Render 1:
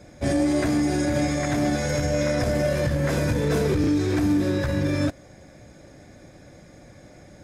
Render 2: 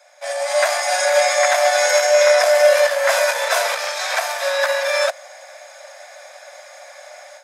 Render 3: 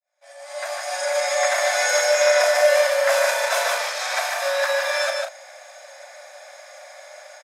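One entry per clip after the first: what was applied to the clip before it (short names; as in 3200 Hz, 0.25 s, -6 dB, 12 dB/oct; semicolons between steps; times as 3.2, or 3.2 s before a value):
steep high-pass 560 Hz 96 dB/oct; AGC gain up to 12 dB; gain +2 dB
opening faded in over 1.72 s; loudspeakers at several distances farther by 13 m -9 dB, 51 m -4 dB, 64 m -10 dB; gain -4.5 dB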